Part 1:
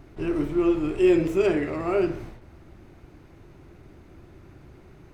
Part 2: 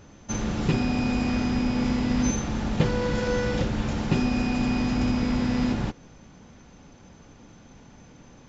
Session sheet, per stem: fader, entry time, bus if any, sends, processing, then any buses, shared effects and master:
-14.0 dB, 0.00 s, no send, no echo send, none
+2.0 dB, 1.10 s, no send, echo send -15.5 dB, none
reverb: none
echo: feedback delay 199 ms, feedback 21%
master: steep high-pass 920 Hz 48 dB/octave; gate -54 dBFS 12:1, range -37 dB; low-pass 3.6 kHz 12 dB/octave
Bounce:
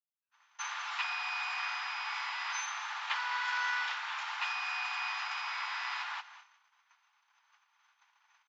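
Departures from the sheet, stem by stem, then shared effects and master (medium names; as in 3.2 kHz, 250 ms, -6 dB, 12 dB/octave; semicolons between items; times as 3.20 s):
stem 1 -14.0 dB -> -22.0 dB; stem 2: entry 1.10 s -> 0.30 s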